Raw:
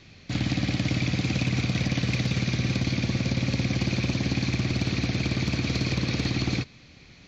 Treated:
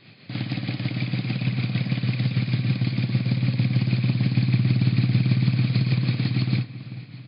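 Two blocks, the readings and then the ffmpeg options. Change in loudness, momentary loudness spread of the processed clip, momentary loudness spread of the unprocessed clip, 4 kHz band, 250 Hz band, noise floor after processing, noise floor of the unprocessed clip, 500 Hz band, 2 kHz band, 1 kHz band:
+3.0 dB, 8 LU, 1 LU, −3.0 dB, +1.5 dB, −44 dBFS, −51 dBFS, −4.5 dB, −3.0 dB, −3.5 dB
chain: -filter_complex "[0:a]asplit=2[link_01][link_02];[link_02]acompressor=threshold=-35dB:ratio=6,volume=1dB[link_03];[link_01][link_03]amix=inputs=2:normalize=0,afftfilt=real='re*between(b*sr/4096,100,5100)':imag='im*between(b*sr/4096,100,5100)':win_size=4096:overlap=0.75,tremolo=f=6.5:d=0.46,asubboost=boost=5:cutoff=180,asplit=2[link_04][link_05];[link_05]adelay=388,lowpass=frequency=2300:poles=1,volume=-14dB,asplit=2[link_06][link_07];[link_07]adelay=388,lowpass=frequency=2300:poles=1,volume=0.53,asplit=2[link_08][link_09];[link_09]adelay=388,lowpass=frequency=2300:poles=1,volume=0.53,asplit=2[link_10][link_11];[link_11]adelay=388,lowpass=frequency=2300:poles=1,volume=0.53,asplit=2[link_12][link_13];[link_13]adelay=388,lowpass=frequency=2300:poles=1,volume=0.53[link_14];[link_04][link_06][link_08][link_10][link_12][link_14]amix=inputs=6:normalize=0,volume=-3dB"

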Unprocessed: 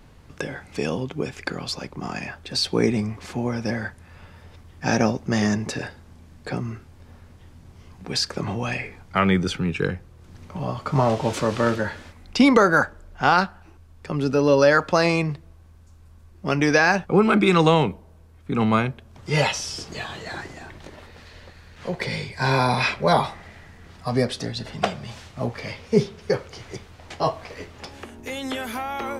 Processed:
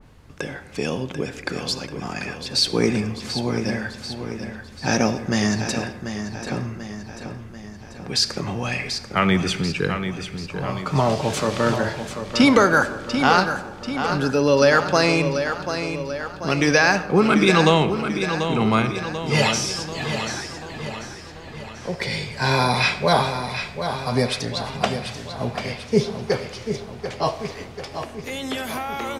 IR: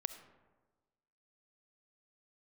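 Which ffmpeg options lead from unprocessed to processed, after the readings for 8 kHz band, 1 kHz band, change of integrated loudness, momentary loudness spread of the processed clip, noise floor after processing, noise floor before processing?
+5.5 dB, +1.5 dB, +1.0 dB, 16 LU, −39 dBFS, −49 dBFS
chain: -filter_complex "[0:a]aecho=1:1:739|1478|2217|2956|3695|4434|5173:0.376|0.21|0.118|0.066|0.037|0.0207|0.0116,asplit=2[link_01][link_02];[1:a]atrim=start_sample=2205,asetrate=41454,aresample=44100[link_03];[link_02][link_03]afir=irnorm=-1:irlink=0,volume=6.5dB[link_04];[link_01][link_04]amix=inputs=2:normalize=0,adynamicequalizer=threshold=0.0562:dfrequency=2300:dqfactor=0.7:tfrequency=2300:tqfactor=0.7:attack=5:release=100:ratio=0.375:range=2.5:mode=boostabove:tftype=highshelf,volume=-9dB"

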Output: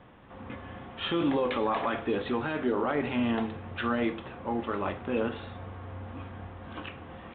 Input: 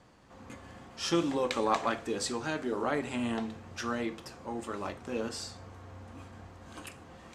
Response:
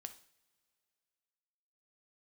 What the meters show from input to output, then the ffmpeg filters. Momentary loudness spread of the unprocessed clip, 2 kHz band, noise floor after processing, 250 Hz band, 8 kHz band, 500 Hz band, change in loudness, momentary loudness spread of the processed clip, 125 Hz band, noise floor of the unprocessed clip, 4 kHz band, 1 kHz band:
19 LU, +3.0 dB, −47 dBFS, +4.0 dB, below −40 dB, +3.5 dB, +2.5 dB, 14 LU, +5.0 dB, −53 dBFS, 0.0 dB, +2.0 dB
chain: -filter_complex "[0:a]alimiter=level_in=1dB:limit=-24dB:level=0:latency=1:release=11,volume=-1dB,asplit=2[link_01][link_02];[1:a]atrim=start_sample=2205,lowpass=5000[link_03];[link_02][link_03]afir=irnorm=-1:irlink=0,volume=6dB[link_04];[link_01][link_04]amix=inputs=2:normalize=0,aresample=8000,aresample=44100"

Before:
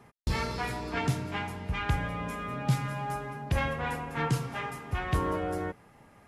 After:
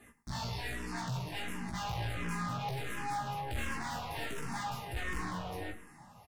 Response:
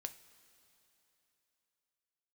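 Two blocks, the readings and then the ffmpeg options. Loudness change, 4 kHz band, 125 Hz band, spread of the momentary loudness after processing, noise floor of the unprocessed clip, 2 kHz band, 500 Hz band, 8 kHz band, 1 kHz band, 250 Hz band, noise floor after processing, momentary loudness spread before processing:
−6.0 dB, −1.5 dB, −8.5 dB, 4 LU, −58 dBFS, −4.5 dB, −9.5 dB, −1.0 dB, −4.5 dB, −7.0 dB, −58 dBFS, 6 LU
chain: -filter_complex "[0:a]acrossover=split=5900[link_01][link_02];[link_02]acompressor=threshold=-57dB:ratio=4:attack=1:release=60[link_03];[link_01][link_03]amix=inputs=2:normalize=0,aemphasis=mode=production:type=cd,aecho=1:1:1.1:0.45,dynaudnorm=framelen=280:gausssize=11:maxgain=6dB,flanger=delay=3.2:depth=8.9:regen=60:speed=0.64:shape=triangular,aeval=exprs='(tanh(100*val(0)+0.3)-tanh(0.3))/100':channel_layout=same,asplit=2[link_04][link_05];[link_05]adelay=105,volume=-17dB,highshelf=frequency=4000:gain=-2.36[link_06];[link_04][link_06]amix=inputs=2:normalize=0,asplit=2[link_07][link_08];[1:a]atrim=start_sample=2205,adelay=17[link_09];[link_08][link_09]afir=irnorm=-1:irlink=0,volume=0dB[link_10];[link_07][link_10]amix=inputs=2:normalize=0,asplit=2[link_11][link_12];[link_12]afreqshift=-1.4[link_13];[link_11][link_13]amix=inputs=2:normalize=1,volume=5dB"

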